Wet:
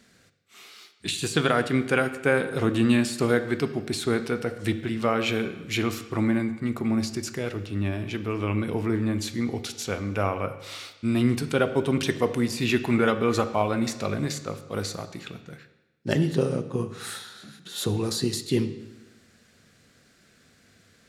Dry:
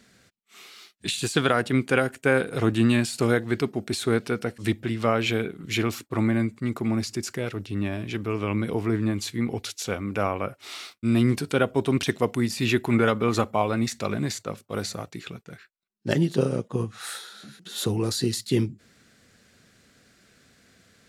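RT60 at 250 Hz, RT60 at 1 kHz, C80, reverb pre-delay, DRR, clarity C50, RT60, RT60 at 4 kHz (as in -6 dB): 1.1 s, 1.1 s, 13.5 dB, 13 ms, 9.5 dB, 12.0 dB, 1.1 s, 1.0 s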